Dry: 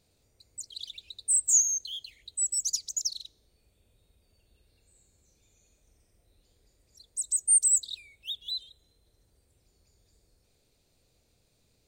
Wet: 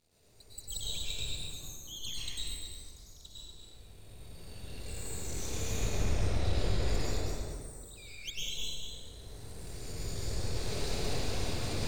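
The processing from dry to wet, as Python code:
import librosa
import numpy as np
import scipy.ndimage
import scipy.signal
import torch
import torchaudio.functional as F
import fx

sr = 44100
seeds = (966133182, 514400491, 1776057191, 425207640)

y = fx.recorder_agc(x, sr, target_db=-19.0, rise_db_per_s=11.0, max_gain_db=30)
y = fx.env_lowpass_down(y, sr, base_hz=1400.0, full_db=-27.5)
y = fx.high_shelf(y, sr, hz=3000.0, db=-11.5, at=(2.45, 3.24))
y = np.maximum(y, 0.0)
y = y + 10.0 ** (-7.0 / 20.0) * np.pad(y, (int(243 * sr / 1000.0), 0))[:len(y)]
y = fx.rev_plate(y, sr, seeds[0], rt60_s=2.0, hf_ratio=0.55, predelay_ms=90, drr_db=-9.0)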